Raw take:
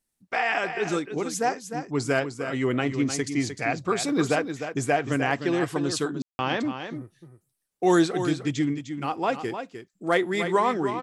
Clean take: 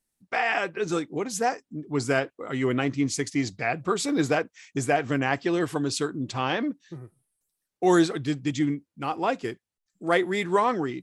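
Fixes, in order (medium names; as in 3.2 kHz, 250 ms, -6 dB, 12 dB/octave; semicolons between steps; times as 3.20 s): clip repair -10 dBFS; room tone fill 6.22–6.39 s; inverse comb 304 ms -9 dB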